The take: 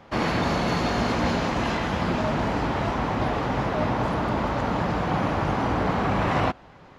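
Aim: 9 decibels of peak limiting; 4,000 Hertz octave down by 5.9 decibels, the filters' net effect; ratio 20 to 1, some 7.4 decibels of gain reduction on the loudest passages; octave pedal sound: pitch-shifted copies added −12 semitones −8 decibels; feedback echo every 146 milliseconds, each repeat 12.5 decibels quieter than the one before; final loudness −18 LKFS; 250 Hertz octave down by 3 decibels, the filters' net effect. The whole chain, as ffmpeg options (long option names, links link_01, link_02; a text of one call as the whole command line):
ffmpeg -i in.wav -filter_complex "[0:a]equalizer=frequency=250:width_type=o:gain=-4,equalizer=frequency=4000:width_type=o:gain=-8,acompressor=threshold=-28dB:ratio=20,alimiter=level_in=5dB:limit=-24dB:level=0:latency=1,volume=-5dB,aecho=1:1:146|292|438:0.237|0.0569|0.0137,asplit=2[link_01][link_02];[link_02]asetrate=22050,aresample=44100,atempo=2,volume=-8dB[link_03];[link_01][link_03]amix=inputs=2:normalize=0,volume=19dB" out.wav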